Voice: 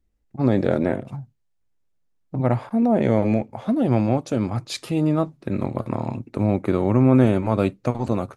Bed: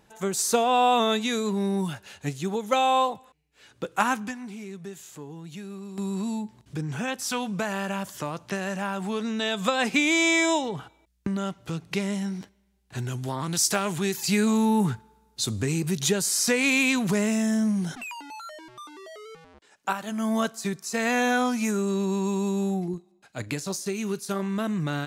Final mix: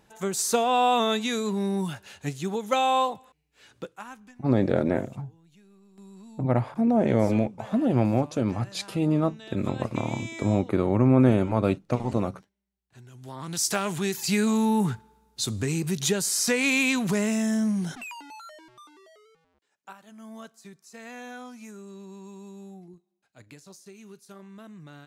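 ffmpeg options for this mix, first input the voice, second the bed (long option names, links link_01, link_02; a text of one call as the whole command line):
ffmpeg -i stem1.wav -i stem2.wav -filter_complex "[0:a]adelay=4050,volume=-3dB[link_01];[1:a]volume=16dB,afade=type=out:start_time=3.74:duration=0.23:silence=0.141254,afade=type=in:start_time=13.12:duration=0.68:silence=0.141254,afade=type=out:start_time=17.88:duration=1.49:silence=0.149624[link_02];[link_01][link_02]amix=inputs=2:normalize=0" out.wav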